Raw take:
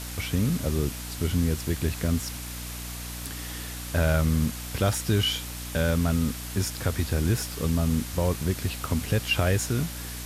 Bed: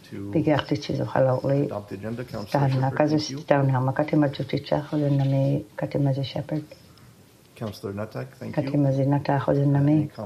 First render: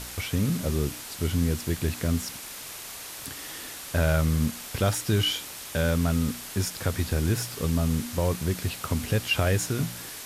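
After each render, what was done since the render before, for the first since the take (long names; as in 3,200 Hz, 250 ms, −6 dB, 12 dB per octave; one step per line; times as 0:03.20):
hum removal 60 Hz, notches 5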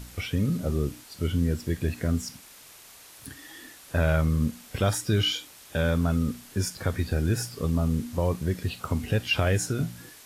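noise reduction from a noise print 10 dB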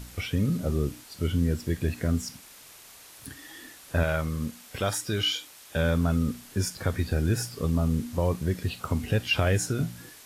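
0:04.03–0:05.76: low-shelf EQ 310 Hz −8 dB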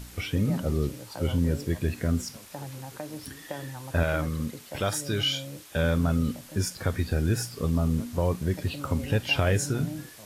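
mix in bed −17.5 dB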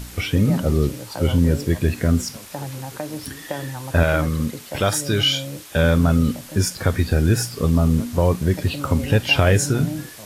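level +8 dB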